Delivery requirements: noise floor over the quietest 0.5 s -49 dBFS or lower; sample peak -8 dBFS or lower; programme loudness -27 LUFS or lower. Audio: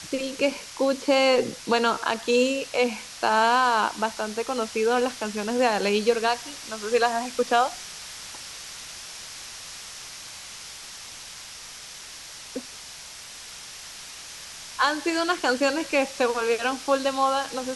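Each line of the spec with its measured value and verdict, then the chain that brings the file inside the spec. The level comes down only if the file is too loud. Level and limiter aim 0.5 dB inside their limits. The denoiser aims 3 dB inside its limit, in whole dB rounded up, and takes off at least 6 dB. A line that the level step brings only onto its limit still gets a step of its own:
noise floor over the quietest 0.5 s -42 dBFS: fail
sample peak -7.5 dBFS: fail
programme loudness -24.0 LUFS: fail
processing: noise reduction 7 dB, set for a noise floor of -42 dBFS; trim -3.5 dB

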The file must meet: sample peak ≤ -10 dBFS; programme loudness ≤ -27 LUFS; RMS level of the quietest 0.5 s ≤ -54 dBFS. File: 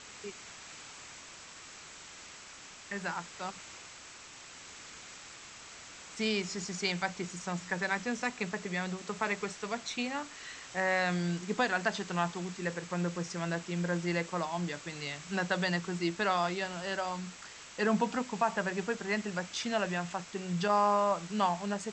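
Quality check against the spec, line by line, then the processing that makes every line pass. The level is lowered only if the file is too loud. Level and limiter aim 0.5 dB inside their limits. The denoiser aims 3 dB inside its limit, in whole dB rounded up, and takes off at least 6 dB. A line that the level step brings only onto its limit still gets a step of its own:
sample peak -15.0 dBFS: pass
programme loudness -33.5 LUFS: pass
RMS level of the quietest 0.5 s -50 dBFS: fail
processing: noise reduction 7 dB, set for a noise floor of -50 dBFS

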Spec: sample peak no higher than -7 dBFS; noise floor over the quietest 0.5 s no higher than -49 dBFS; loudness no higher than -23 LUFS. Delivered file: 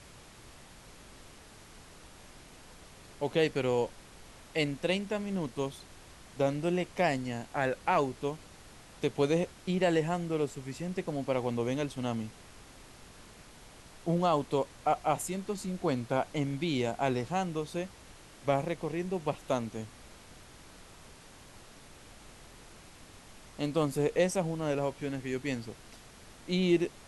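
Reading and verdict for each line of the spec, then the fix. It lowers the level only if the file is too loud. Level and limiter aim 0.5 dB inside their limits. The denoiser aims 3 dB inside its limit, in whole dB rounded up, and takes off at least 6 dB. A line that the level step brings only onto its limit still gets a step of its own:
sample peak -14.5 dBFS: pass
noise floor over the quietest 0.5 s -53 dBFS: pass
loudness -32.0 LUFS: pass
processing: none needed

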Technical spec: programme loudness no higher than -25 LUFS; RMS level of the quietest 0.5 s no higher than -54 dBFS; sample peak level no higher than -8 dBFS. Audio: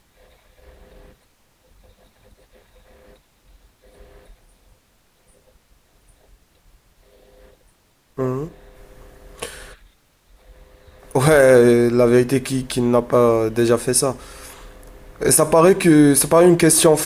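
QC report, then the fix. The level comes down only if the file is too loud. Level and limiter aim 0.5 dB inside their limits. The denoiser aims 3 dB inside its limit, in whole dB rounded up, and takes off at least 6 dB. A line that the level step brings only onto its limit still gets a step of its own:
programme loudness -15.0 LUFS: fail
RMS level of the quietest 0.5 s -59 dBFS: pass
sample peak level -3.5 dBFS: fail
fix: trim -10.5 dB

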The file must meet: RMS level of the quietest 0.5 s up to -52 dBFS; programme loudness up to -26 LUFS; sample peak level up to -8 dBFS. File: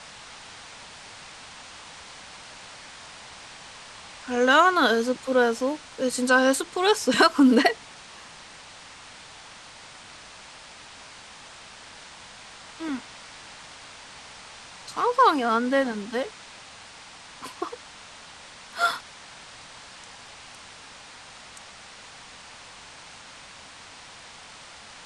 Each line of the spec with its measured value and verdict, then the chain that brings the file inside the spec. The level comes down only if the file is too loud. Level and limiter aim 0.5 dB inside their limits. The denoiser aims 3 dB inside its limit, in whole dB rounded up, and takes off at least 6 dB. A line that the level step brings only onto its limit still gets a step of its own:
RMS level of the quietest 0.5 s -46 dBFS: fail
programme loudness -22.5 LUFS: fail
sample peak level -6.0 dBFS: fail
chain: noise reduction 6 dB, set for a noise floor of -46 dBFS; trim -4 dB

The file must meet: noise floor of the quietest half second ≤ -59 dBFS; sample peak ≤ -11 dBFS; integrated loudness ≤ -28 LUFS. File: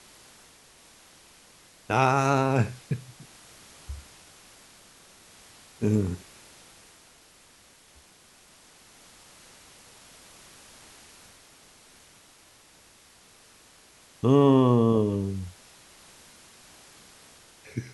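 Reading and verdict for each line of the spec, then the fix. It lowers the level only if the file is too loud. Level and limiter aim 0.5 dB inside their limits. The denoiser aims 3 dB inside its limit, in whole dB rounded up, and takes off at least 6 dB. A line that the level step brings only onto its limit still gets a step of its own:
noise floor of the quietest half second -56 dBFS: fail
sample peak -7.0 dBFS: fail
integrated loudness -24.5 LUFS: fail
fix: trim -4 dB; peak limiter -11.5 dBFS

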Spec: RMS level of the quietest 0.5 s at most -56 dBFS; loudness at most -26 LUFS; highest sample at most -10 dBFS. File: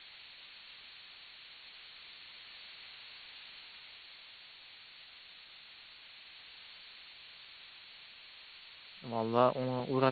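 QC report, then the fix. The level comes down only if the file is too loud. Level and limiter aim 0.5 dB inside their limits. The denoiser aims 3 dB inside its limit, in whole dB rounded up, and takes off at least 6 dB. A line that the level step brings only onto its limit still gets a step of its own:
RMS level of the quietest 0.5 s -55 dBFS: fail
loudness -40.5 LUFS: pass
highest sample -12.5 dBFS: pass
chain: noise reduction 6 dB, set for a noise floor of -55 dBFS

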